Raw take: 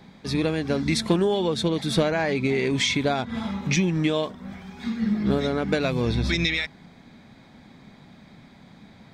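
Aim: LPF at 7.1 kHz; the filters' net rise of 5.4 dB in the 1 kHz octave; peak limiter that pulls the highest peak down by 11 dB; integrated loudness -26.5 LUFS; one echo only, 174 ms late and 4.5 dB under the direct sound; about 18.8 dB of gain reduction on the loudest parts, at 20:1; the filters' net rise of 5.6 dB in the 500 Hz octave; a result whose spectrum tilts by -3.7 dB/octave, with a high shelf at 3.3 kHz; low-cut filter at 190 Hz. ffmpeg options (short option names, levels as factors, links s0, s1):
-af "highpass=190,lowpass=7100,equalizer=f=500:t=o:g=6,equalizer=f=1000:t=o:g=4.5,highshelf=f=3300:g=4,acompressor=threshold=0.0251:ratio=20,alimiter=level_in=1.88:limit=0.0631:level=0:latency=1,volume=0.531,aecho=1:1:174:0.596,volume=3.98"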